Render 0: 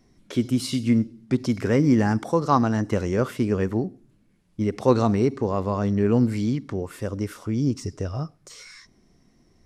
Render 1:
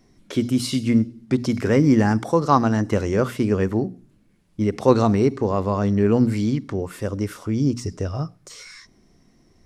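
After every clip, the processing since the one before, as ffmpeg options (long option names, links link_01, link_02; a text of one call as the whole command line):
ffmpeg -i in.wav -af "bandreject=frequency=60:width_type=h:width=6,bandreject=frequency=120:width_type=h:width=6,bandreject=frequency=180:width_type=h:width=6,bandreject=frequency=240:width_type=h:width=6,volume=3dB" out.wav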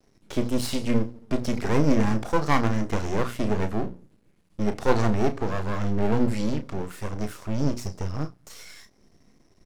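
ffmpeg -i in.wav -filter_complex "[0:a]aeval=exprs='max(val(0),0)':channel_layout=same,asplit=2[link_01][link_02];[link_02]adelay=33,volume=-10dB[link_03];[link_01][link_03]amix=inputs=2:normalize=0" out.wav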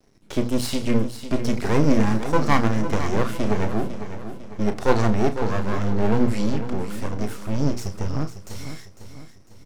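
ffmpeg -i in.wav -af "aecho=1:1:501|1002|1503|2004|2505:0.282|0.127|0.0571|0.0257|0.0116,volume=2.5dB" out.wav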